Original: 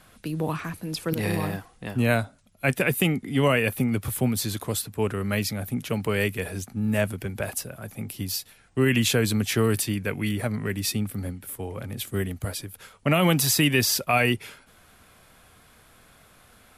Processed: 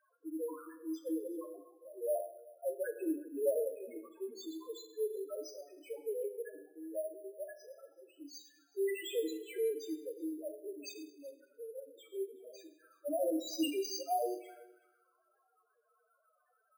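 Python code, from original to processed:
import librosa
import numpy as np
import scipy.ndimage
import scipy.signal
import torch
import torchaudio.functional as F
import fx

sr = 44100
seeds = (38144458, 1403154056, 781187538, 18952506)

p1 = fx.env_lowpass(x, sr, base_hz=1800.0, full_db=-19.0)
p2 = scipy.signal.sosfilt(scipy.signal.cheby1(5, 1.0, [310.0, 5800.0], 'bandpass', fs=sr, output='sos'), p1)
p3 = fx.hum_notches(p2, sr, base_hz=50, count=8)
p4 = fx.spec_topn(p3, sr, count=1)
p5 = p4 + fx.echo_single(p4, sr, ms=374, db=-23.0, dry=0)
p6 = fx.rev_double_slope(p5, sr, seeds[0], early_s=0.73, late_s=2.1, knee_db=-26, drr_db=5.0)
p7 = np.repeat(scipy.signal.resample_poly(p6, 1, 4), 4)[:len(p6)]
y = p7 * librosa.db_to_amplitude(-1.5)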